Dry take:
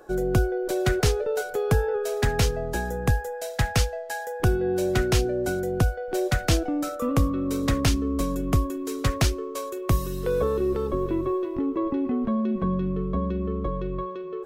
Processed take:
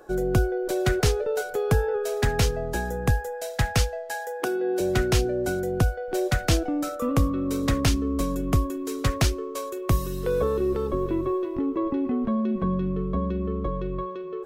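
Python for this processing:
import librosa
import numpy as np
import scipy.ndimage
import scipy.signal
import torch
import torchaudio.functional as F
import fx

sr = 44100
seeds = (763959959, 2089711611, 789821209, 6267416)

y = fx.highpass(x, sr, hz=280.0, slope=24, at=(4.14, 4.8))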